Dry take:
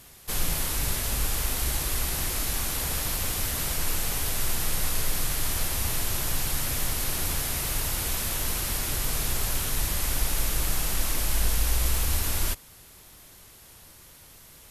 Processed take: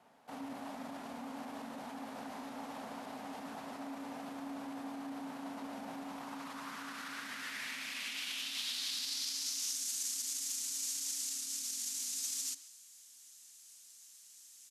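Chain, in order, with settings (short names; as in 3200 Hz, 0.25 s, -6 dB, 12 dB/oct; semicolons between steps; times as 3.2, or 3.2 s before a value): limiter -21.5 dBFS, peak gain reduction 9 dB; speakerphone echo 0.13 s, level -14 dB; frequency shift -290 Hz; band-pass sweep 750 Hz -> 6900 Hz, 5.97–9.88; dynamic EQ 5000 Hz, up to +5 dB, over -58 dBFS, Q 0.88; gain +1 dB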